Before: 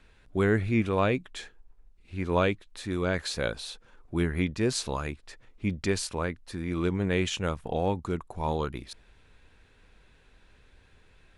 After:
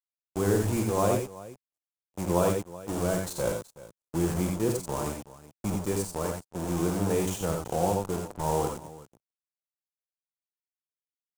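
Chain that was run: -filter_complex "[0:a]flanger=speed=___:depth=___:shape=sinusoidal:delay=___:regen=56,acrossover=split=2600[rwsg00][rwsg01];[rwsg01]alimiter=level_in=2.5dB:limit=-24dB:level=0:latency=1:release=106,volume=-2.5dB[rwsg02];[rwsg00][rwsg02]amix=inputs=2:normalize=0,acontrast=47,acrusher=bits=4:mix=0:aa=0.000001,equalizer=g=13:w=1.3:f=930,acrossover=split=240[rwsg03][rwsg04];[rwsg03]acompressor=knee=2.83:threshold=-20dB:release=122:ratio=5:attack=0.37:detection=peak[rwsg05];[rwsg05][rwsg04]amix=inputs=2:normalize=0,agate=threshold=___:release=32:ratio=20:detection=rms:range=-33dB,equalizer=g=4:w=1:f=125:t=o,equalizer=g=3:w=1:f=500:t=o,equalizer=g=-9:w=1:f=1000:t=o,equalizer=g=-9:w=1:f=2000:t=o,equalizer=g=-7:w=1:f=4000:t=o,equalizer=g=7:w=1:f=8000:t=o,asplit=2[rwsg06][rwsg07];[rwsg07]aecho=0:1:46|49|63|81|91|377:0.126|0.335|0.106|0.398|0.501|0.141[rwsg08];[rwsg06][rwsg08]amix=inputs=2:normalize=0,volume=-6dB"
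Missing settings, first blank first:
0.9, 1.1, 5.6, -29dB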